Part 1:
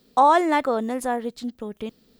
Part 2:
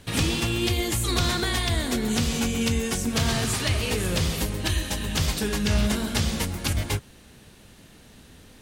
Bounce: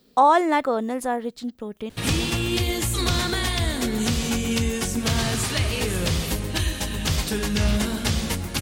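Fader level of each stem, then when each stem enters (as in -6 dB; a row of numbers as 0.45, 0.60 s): 0.0, +1.0 dB; 0.00, 1.90 s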